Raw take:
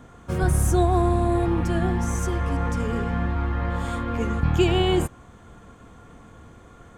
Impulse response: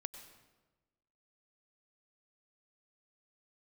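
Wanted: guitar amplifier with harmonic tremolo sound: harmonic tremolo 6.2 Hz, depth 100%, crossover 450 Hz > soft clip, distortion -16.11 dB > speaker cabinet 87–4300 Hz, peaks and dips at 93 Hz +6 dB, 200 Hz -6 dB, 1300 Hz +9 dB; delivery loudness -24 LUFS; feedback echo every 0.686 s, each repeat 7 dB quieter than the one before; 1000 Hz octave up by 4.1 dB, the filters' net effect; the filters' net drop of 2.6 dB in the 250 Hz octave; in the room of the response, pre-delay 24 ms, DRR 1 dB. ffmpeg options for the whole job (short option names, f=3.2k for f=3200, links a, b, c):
-filter_complex "[0:a]equalizer=f=250:t=o:g=-3,equalizer=f=1k:t=o:g=3,aecho=1:1:686|1372|2058|2744|3430:0.447|0.201|0.0905|0.0407|0.0183,asplit=2[a][b];[1:a]atrim=start_sample=2205,adelay=24[c];[b][c]afir=irnorm=-1:irlink=0,volume=2dB[d];[a][d]amix=inputs=2:normalize=0,acrossover=split=450[e][f];[e]aeval=exprs='val(0)*(1-1/2+1/2*cos(2*PI*6.2*n/s))':c=same[g];[f]aeval=exprs='val(0)*(1-1/2-1/2*cos(2*PI*6.2*n/s))':c=same[h];[g][h]amix=inputs=2:normalize=0,asoftclip=threshold=-17dB,highpass=87,equalizer=f=93:t=q:w=4:g=6,equalizer=f=200:t=q:w=4:g=-6,equalizer=f=1.3k:t=q:w=4:g=9,lowpass=f=4.3k:w=0.5412,lowpass=f=4.3k:w=1.3066,volume=4.5dB"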